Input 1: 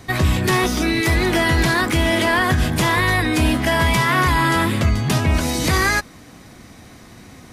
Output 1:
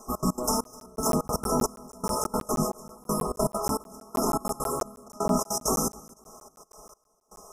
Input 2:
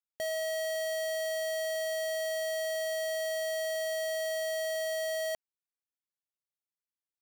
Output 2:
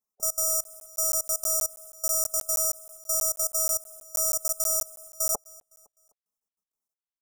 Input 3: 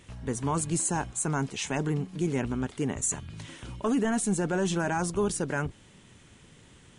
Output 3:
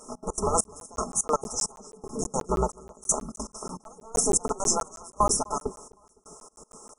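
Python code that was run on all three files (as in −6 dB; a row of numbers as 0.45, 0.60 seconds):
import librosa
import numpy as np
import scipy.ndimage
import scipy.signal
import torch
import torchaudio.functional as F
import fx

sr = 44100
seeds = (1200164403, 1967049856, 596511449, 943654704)

y = fx.spec_gate(x, sr, threshold_db=-10, keep='weak')
y = y + 0.63 * np.pad(y, (int(4.7 * sr / 1000.0), 0))[:len(y)]
y = fx.step_gate(y, sr, bpm=199, pattern='xx.x.xxx.....x', floor_db=-24.0, edge_ms=4.5)
y = fx.brickwall_bandstop(y, sr, low_hz=1400.0, high_hz=5100.0)
y = fx.echo_feedback(y, sr, ms=255, feedback_pct=39, wet_db=-23.0)
y = fx.buffer_crackle(y, sr, first_s=0.64, period_s=0.16, block=512, kind='zero')
y = y * 10.0 ** (-30 / 20.0) / np.sqrt(np.mean(np.square(y)))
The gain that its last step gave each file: −0.5, +16.5, +13.0 decibels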